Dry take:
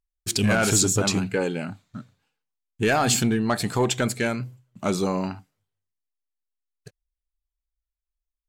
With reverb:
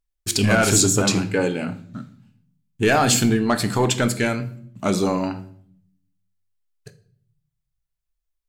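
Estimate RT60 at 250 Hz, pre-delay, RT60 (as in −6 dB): 1.0 s, 3 ms, 0.60 s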